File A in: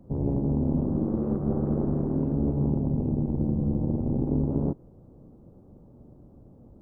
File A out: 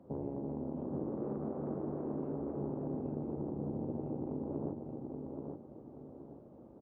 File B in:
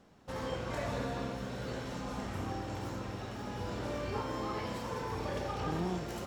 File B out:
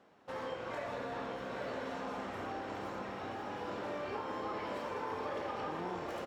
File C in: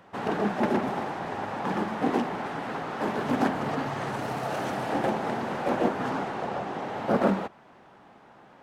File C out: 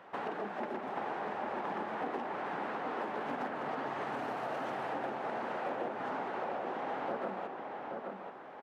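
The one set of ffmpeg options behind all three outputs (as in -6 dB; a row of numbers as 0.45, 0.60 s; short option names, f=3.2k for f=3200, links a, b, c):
-filter_complex "[0:a]highpass=73,bass=f=250:g=-13,treble=f=4k:g=-11,acompressor=threshold=-37dB:ratio=6,asplit=2[a][b];[b]adelay=828,lowpass=f=2.9k:p=1,volume=-4dB,asplit=2[c][d];[d]adelay=828,lowpass=f=2.9k:p=1,volume=0.35,asplit=2[e][f];[f]adelay=828,lowpass=f=2.9k:p=1,volume=0.35,asplit=2[g][h];[h]adelay=828,lowpass=f=2.9k:p=1,volume=0.35[i];[a][c][e][g][i]amix=inputs=5:normalize=0,volume=1dB"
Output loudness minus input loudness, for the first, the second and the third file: -13.0, -2.5, -9.0 LU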